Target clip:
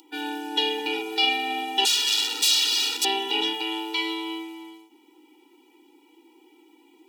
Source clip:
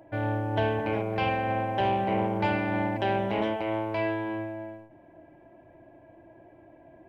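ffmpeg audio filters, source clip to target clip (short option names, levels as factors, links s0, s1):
-filter_complex "[0:a]asettb=1/sr,asplit=3[s0][s1][s2];[s0]atrim=end=1.854[s3];[s1]atrim=start=1.85:end=3.05,asetpts=PTS-STARTPTS,afade=t=in:d=0.004:c=qsin,afade=t=out:st=1.196:d=0.004:c=qsin,aeval=exprs='0.0251*(abs(mod(val(0)/0.0251+3,4)-2)-1)':c=same[s4];[s2]atrim=start=3.046[s5];[s3][s4]acrossfade=d=0.004:c1=hsin:c2=qsin[s6];[s6][s5]acrossfade=d=0.004:c1=qsin:c2=hsin,equalizer=f=3100:t=o:w=1.5:g=9,aexciter=amount=10.1:drive=5:freq=3000,afftfilt=real='re*eq(mod(floor(b*sr/1024/250),2),1)':imag='im*eq(mod(floor(b*sr/1024/250),2),1)':win_size=1024:overlap=0.75"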